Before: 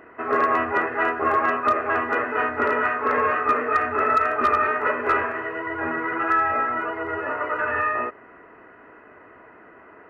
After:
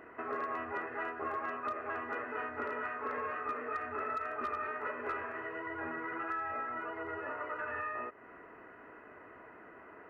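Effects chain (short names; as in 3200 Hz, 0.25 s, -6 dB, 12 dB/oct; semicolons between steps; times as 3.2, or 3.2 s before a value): compressor 2.5:1, threshold -35 dBFS, peak gain reduction 13 dB; gain -5.5 dB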